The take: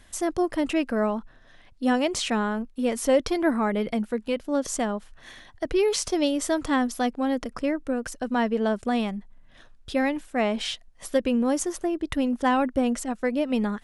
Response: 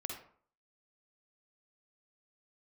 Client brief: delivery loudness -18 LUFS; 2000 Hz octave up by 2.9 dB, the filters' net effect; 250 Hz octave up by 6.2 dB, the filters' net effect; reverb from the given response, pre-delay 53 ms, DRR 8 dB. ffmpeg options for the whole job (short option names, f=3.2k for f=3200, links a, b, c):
-filter_complex "[0:a]equalizer=f=250:t=o:g=7,equalizer=f=2k:t=o:g=3.5,asplit=2[a][b];[1:a]atrim=start_sample=2205,adelay=53[c];[b][c]afir=irnorm=-1:irlink=0,volume=-7.5dB[d];[a][d]amix=inputs=2:normalize=0,volume=3dB"